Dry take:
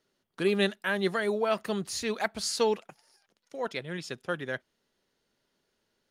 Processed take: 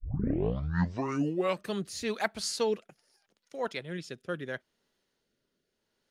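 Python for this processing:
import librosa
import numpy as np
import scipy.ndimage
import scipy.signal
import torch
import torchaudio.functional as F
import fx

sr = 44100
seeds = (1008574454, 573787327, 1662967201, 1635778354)

y = fx.tape_start_head(x, sr, length_s=1.74)
y = fx.rotary_switch(y, sr, hz=6.0, then_hz=0.75, switch_at_s=1.23)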